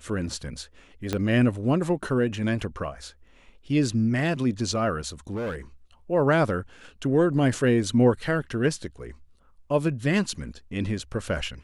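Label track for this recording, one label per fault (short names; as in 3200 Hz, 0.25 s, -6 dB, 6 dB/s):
1.130000	1.130000	pop -12 dBFS
5.300000	5.550000	clipped -27 dBFS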